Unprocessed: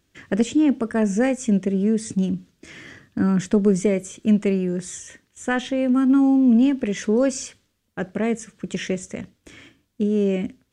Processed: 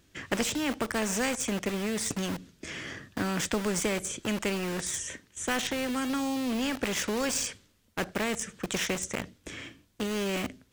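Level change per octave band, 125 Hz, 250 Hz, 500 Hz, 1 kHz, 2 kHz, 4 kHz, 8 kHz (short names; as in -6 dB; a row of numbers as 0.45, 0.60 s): -11.0, -13.0, -9.0, -2.0, 0.0, +4.0, +2.5 dB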